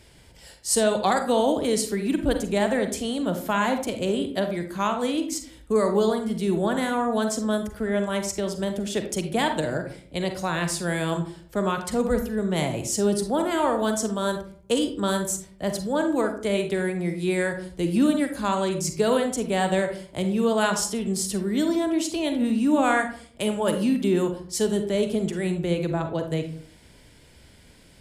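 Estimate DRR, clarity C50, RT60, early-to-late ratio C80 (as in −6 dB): 6.0 dB, 8.0 dB, 0.55 s, 13.0 dB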